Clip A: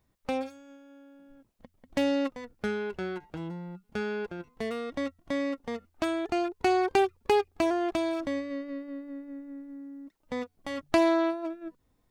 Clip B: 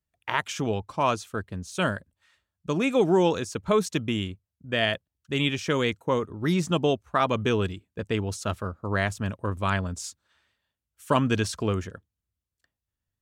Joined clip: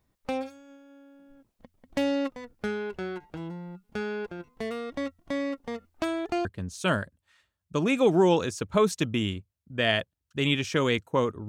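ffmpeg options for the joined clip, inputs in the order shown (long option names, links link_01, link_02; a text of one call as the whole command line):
ffmpeg -i cue0.wav -i cue1.wav -filter_complex "[0:a]apad=whole_dur=11.48,atrim=end=11.48,atrim=end=6.452[link_01];[1:a]atrim=start=1.388:end=6.42[link_02];[link_01][link_02]acrossfade=duration=0.004:curve1=hsin:curve2=hsin" out.wav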